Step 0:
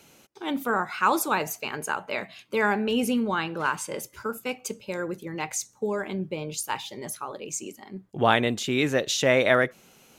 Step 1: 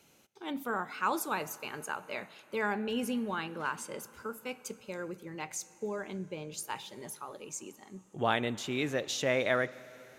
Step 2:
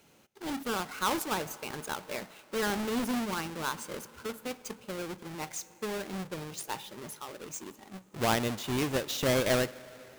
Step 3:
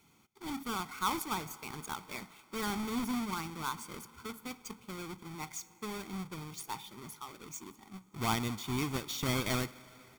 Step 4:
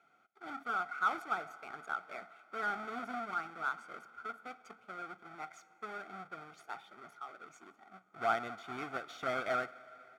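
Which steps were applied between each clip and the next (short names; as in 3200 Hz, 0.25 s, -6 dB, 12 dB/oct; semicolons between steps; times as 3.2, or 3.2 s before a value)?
plate-style reverb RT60 4.4 s, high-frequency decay 0.8×, DRR 18 dB; gain -8.5 dB
half-waves squared off; gain -2.5 dB
comb 0.9 ms, depth 73%; gain -5.5 dB
double band-pass 980 Hz, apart 1 oct; gain +10 dB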